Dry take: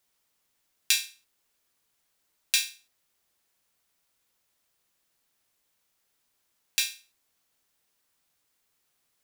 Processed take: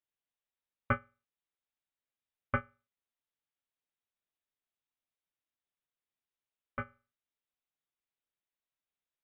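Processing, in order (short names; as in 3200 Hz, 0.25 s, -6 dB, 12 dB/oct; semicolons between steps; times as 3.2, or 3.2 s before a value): inverted band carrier 3900 Hz; upward expander 2.5:1, over -36 dBFS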